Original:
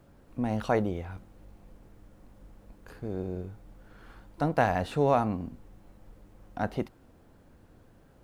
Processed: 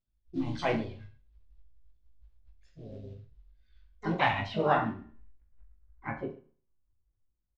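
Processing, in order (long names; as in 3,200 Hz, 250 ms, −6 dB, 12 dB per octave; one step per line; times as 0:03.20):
spectral dynamics exaggerated over time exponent 2
low-pass filter 7,100 Hz 24 dB per octave
high-shelf EQ 2,200 Hz +5.5 dB
hum removal 142.2 Hz, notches 9
in parallel at −9.5 dB: floating-point word with a short mantissa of 2 bits
on the sum: low-pass filter sweep 3,400 Hz → 1,000 Hz, 0:03.68–0:07.36
pitch-shifted copies added −5 semitones −15 dB, +4 semitones −7 dB, +5 semitones −8 dB
on a send: reverse bouncing-ball delay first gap 20 ms, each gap 1.2×, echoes 5
on the sum: four-comb reverb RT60 0.49 s, combs from 26 ms, DRR 14 dB
wrong playback speed 44.1 kHz file played as 48 kHz
level −6 dB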